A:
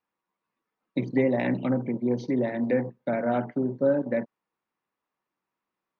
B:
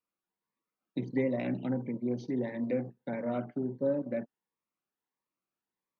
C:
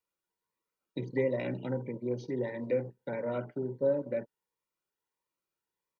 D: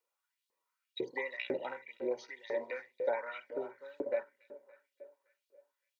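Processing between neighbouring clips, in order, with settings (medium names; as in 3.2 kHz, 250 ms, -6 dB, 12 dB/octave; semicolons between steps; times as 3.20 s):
Shepard-style phaser rising 1.5 Hz; trim -6 dB
comb 2.1 ms, depth 51%
two-band feedback delay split 310 Hz, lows 157 ms, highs 284 ms, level -16 dB; LFO high-pass saw up 2 Hz 390–4000 Hz; trim +1 dB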